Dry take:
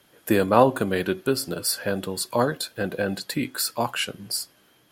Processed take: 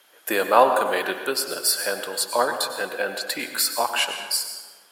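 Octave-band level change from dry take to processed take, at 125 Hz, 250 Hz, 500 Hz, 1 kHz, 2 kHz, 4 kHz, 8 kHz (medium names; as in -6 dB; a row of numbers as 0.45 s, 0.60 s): -19.5 dB, -9.0 dB, 0.0 dB, +4.0 dB, +4.5 dB, +4.5 dB, +4.5 dB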